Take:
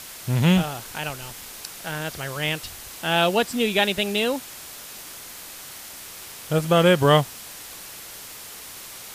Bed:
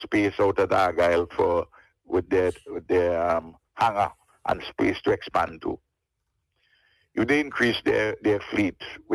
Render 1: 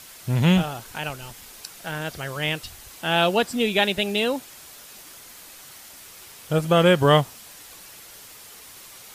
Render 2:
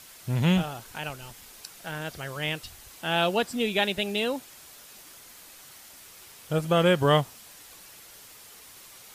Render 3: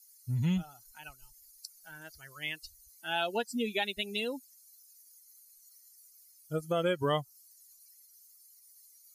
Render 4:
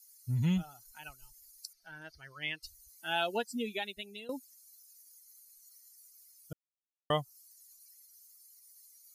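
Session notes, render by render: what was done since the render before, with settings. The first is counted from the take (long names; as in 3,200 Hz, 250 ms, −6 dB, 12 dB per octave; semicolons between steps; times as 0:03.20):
broadband denoise 6 dB, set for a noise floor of −40 dBFS
level −4.5 dB
spectral dynamics exaggerated over time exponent 2; downward compressor 2 to 1, threshold −30 dBFS, peak gain reduction 7 dB
0:01.73–0:02.63: Savitzky-Golay smoothing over 15 samples; 0:03.21–0:04.29: fade out, to −16 dB; 0:06.53–0:07.10: silence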